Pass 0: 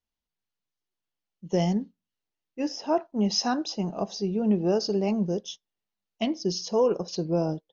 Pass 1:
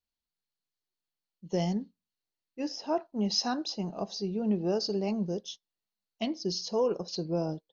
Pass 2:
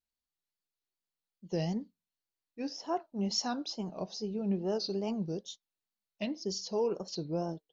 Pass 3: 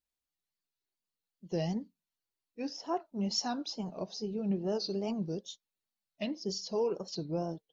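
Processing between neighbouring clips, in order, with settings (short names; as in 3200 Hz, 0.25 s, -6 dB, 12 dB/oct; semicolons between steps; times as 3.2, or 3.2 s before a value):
bell 4300 Hz +9 dB 0.32 oct; gain -5 dB
wow and flutter 120 cents; gain -3.5 dB
bin magnitudes rounded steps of 15 dB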